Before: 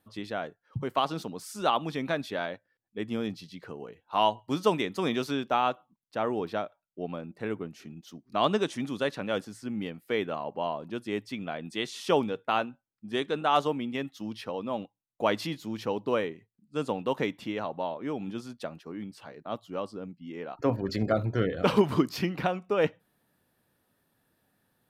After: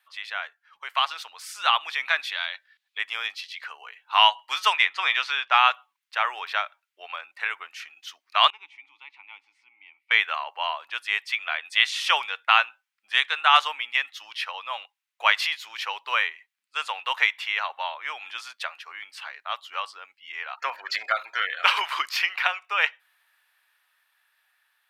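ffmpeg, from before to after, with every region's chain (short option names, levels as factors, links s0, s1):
-filter_complex "[0:a]asettb=1/sr,asplit=3[s0][s1][s2];[s0]atrim=end=2.324[s3];[s1]atrim=start=2.32:end=2.98,asetpts=PTS-STARTPTS,afade=t=in:d=0.004:c=qsin,afade=t=out:st=0.656:d=0.004:c=qsin,equalizer=f=3800:w=1.7:g=11.5,acompressor=threshold=0.0112:ratio=2:attack=3.2:release=140:knee=1:detection=peak[s4];[s2]atrim=start=2.976[s5];[s3][s4]acrossfade=d=0.004:c1=hsin:c2=qsin[s6];[s6][s5]acrossfade=d=0.004:c1=qsin:c2=hsin,asettb=1/sr,asplit=3[s7][s8][s9];[s7]atrim=end=4.734[s10];[s8]atrim=start=4.73:end=5.58,asetpts=PTS-STARTPTS,afade=t=in:d=0.004:c=qsin,afade=t=out:st=0.846:d=0.004:c=qsin,adynamicsmooth=sensitivity=1:basefreq=4700,asplit=2[s11][s12];[s12]adelay=12,volume=0.237[s13];[s11][s13]amix=inputs=2:normalize=0,atrim=end_sample=37485[s14];[s9]atrim=start=5.576[s15];[s10][s14]acrossfade=d=0.004:c1=hsin:c2=qsin[s16];[s16][s15]acrossfade=d=0.004:c1=qsin:c2=hsin,asettb=1/sr,asplit=3[s17][s18][s19];[s17]atrim=end=8.504[s20];[s18]atrim=start=8.5:end=10.11,asetpts=PTS-STARTPTS,afade=t=in:d=0.004:c=qsin,afade=t=out:st=1.606:d=0.004:c=qsin,asplit=3[s21][s22][s23];[s21]bandpass=f=300:t=q:w=8,volume=1[s24];[s22]bandpass=f=870:t=q:w=8,volume=0.501[s25];[s23]bandpass=f=2240:t=q:w=8,volume=0.355[s26];[s24][s25][s26]amix=inputs=3:normalize=0,acompressor=threshold=0.00158:ratio=1.5:attack=3.2:release=140:knee=1:detection=peak[s27];[s19]atrim=start=10.106[s28];[s20][s27]acrossfade=d=0.004:c1=hsin:c2=qsin[s29];[s29][s28]acrossfade=d=0.004:c1=qsin:c2=hsin,highpass=f=920:w=0.5412,highpass=f=920:w=1.3066,equalizer=f=2300:w=0.76:g=12.5,dynaudnorm=f=860:g=5:m=2.11"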